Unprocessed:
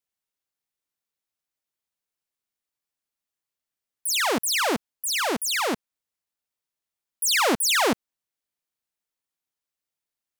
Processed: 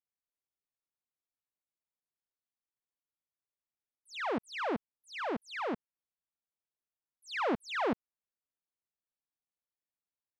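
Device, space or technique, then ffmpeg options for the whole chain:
phone in a pocket: -af "lowpass=3200,highshelf=frequency=2200:gain=-12,volume=-7.5dB"

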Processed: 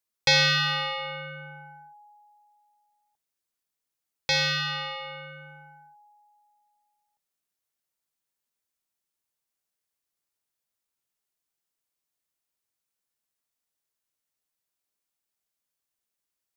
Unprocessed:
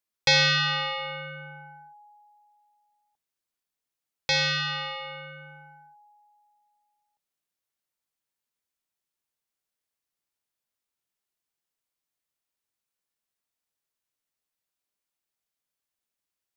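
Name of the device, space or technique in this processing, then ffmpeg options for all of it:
exciter from parts: -filter_complex "[0:a]asplit=2[link_01][link_02];[link_02]highpass=4100,asoftclip=type=tanh:threshold=-33.5dB,volume=-9dB[link_03];[link_01][link_03]amix=inputs=2:normalize=0"

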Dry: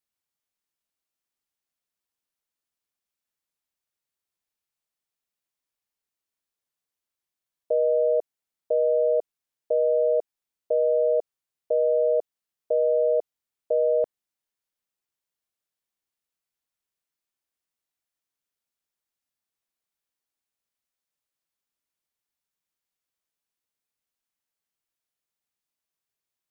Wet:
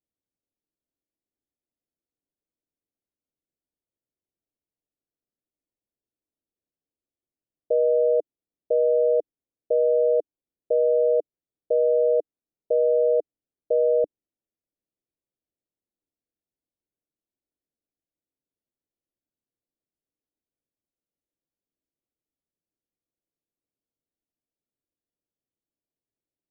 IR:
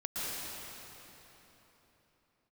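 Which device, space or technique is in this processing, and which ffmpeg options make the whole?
under water: -af "lowpass=frequency=600:width=0.5412,lowpass=frequency=600:width=1.3066,equalizer=frequency=300:width_type=o:width=0.44:gain=6,volume=3dB"

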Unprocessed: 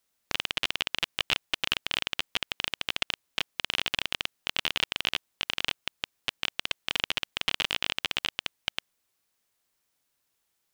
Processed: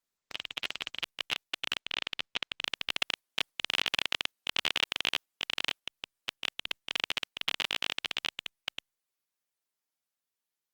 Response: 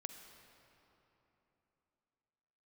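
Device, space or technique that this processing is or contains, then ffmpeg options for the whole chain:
video call: -filter_complex "[0:a]asettb=1/sr,asplit=3[link_01][link_02][link_03];[link_01]atrim=end=1.784[link_04];[link_02]atrim=start=1.78:end=2.64,asetpts=PTS-STARTPTS,afade=type=in:duration=0.004:curve=qsin,afade=type=out:start_time=0.856:duration=0.004:curve=qsin,lowpass=5700[link_05];[link_03]atrim=start=2.636[link_06];[link_04][link_05]acrossfade=duration=0.004:curve1=hsin:curve2=qsin[link_07];[link_07][link_06]acrossfade=duration=0.004:curve1=qsin:curve2=hsin,highpass=frequency=180:poles=1,dynaudnorm=framelen=530:gausssize=9:maxgain=8dB,agate=range=-7dB:threshold=-35dB:ratio=16:detection=peak,volume=-5.5dB" -ar 48000 -c:a libopus -b:a 20k

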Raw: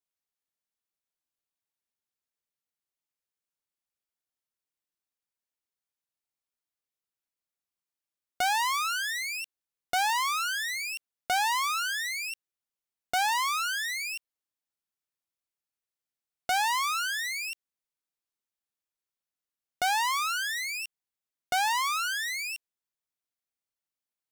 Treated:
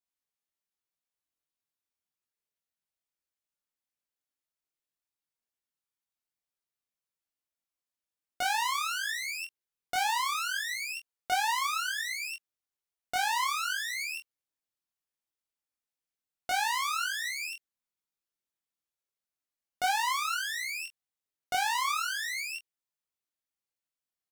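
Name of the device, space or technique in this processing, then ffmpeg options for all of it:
double-tracked vocal: -filter_complex "[0:a]asplit=2[link_01][link_02];[link_02]adelay=23,volume=-7dB[link_03];[link_01][link_03]amix=inputs=2:normalize=0,flanger=delay=19:depth=4.9:speed=0.25"

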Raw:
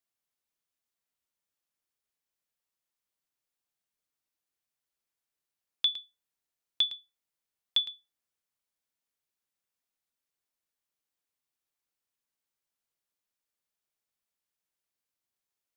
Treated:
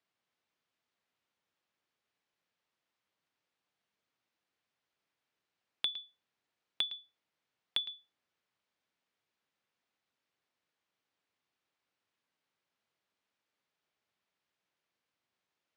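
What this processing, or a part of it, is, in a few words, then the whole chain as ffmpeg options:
AM radio: -af "highpass=100,lowpass=3600,acompressor=threshold=-39dB:ratio=6,asoftclip=type=tanh:threshold=-25dB,volume=8dB"

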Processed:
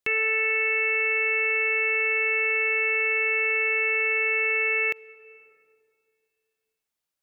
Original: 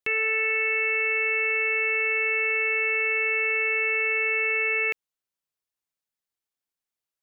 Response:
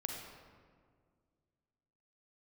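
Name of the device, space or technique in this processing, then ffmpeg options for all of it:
ducked reverb: -filter_complex "[0:a]asplit=3[link_01][link_02][link_03];[1:a]atrim=start_sample=2205[link_04];[link_02][link_04]afir=irnorm=-1:irlink=0[link_05];[link_03]apad=whole_len=318657[link_06];[link_05][link_06]sidechaincompress=threshold=-42dB:ratio=3:attack=10:release=428,volume=-4dB[link_07];[link_01][link_07]amix=inputs=2:normalize=0"

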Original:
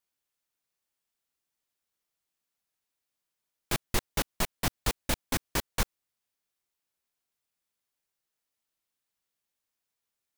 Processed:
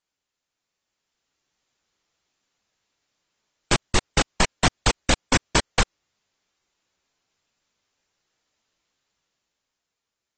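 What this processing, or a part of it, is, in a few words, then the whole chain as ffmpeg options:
low-bitrate web radio: -af "dynaudnorm=framelen=110:gausssize=21:maxgain=8dB,alimiter=limit=-10dB:level=0:latency=1:release=104,volume=4dB" -ar 32000 -c:a aac -b:a 24k

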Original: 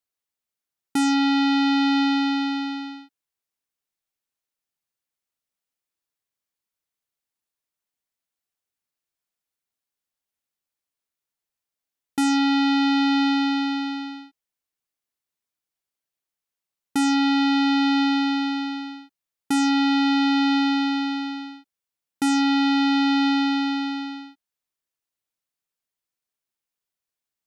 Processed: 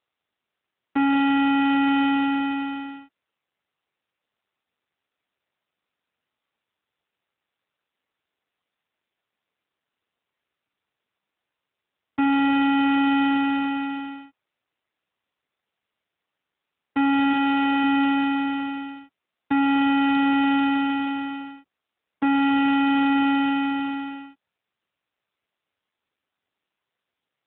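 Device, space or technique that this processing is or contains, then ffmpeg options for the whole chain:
telephone: -filter_complex "[0:a]asettb=1/sr,asplit=3[link_01][link_02][link_03];[link_01]atrim=end=17.334[link_04];[link_02]atrim=start=17.33:end=17.84,asetpts=PTS-STARTPTS,afade=type=in:duration=0.004:curve=qsin,afade=type=out:start_time=0.506:duration=0.004:curve=qsin,adynamicequalizer=threshold=0.00794:dfrequency=230:dqfactor=4.7:tfrequency=230:tqfactor=4.7:attack=5:release=100:ratio=0.375:range=4:mode=cutabove:tftype=bell[link_05];[link_03]atrim=start=17.836[link_06];[link_04][link_05]acrossfade=duration=0.004:curve1=hsin:curve2=qsin[link_07];[link_07][link_06]acrossfade=duration=0.004:curve1=qsin:curve2=hsin,highpass=280,lowpass=3000,volume=3dB" -ar 8000 -c:a libopencore_amrnb -b:a 7400

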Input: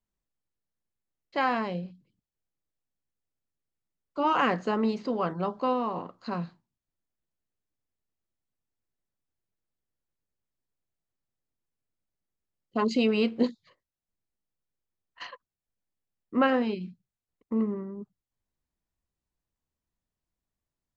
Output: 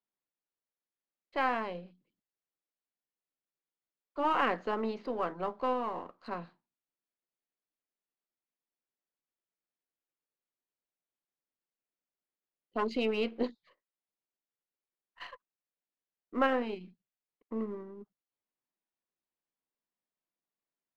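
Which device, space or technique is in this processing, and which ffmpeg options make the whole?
crystal radio: -af "highpass=290,lowpass=3500,aeval=exprs='if(lt(val(0),0),0.708*val(0),val(0))':channel_layout=same,volume=-2.5dB"

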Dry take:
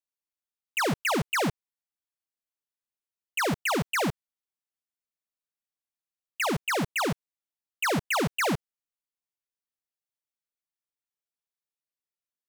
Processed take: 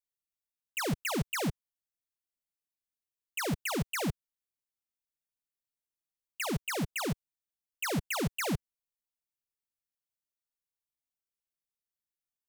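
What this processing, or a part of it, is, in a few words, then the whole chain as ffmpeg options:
smiley-face EQ: -af "lowshelf=frequency=120:gain=8.5,equalizer=frequency=1100:width_type=o:width=2.2:gain=-5,highshelf=frequency=8400:gain=5,volume=-5dB"

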